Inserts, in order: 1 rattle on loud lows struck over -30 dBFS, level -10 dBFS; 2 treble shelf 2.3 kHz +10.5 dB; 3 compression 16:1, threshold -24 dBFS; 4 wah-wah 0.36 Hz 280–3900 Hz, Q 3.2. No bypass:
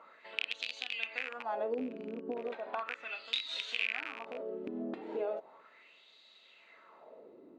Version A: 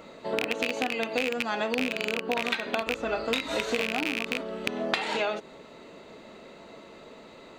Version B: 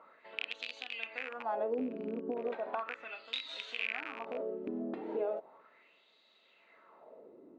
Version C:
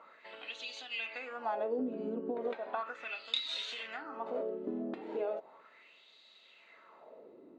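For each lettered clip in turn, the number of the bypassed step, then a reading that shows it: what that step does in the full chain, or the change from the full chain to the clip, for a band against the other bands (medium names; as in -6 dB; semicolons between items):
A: 4, 8 kHz band +7.0 dB; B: 2, 4 kHz band -5.5 dB; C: 1, 2 kHz band -6.0 dB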